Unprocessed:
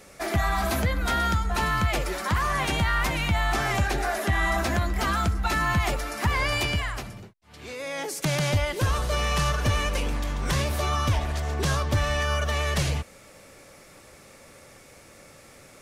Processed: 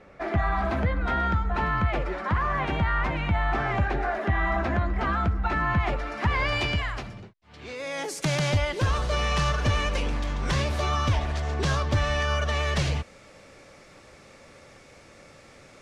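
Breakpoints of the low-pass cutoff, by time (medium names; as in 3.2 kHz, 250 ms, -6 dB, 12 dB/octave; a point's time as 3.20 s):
5.67 s 2 kHz
6.68 s 4.5 kHz
7.64 s 4.5 kHz
8.00 s 9.6 kHz
8.80 s 5.8 kHz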